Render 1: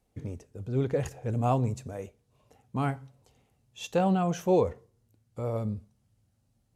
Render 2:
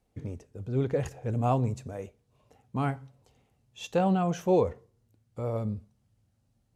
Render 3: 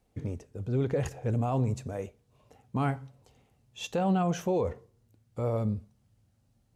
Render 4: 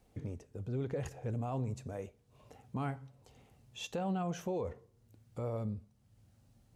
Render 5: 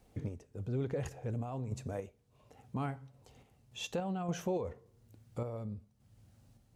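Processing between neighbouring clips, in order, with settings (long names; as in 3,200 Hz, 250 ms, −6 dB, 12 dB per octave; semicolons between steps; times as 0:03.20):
high-shelf EQ 6,700 Hz −5 dB
brickwall limiter −22.5 dBFS, peak gain reduction 9.5 dB; level +2.5 dB
downward compressor 1.5 to 1, threshold −59 dBFS, peak gain reduction 12.5 dB; level +3.5 dB
sample-and-hold tremolo; level +3 dB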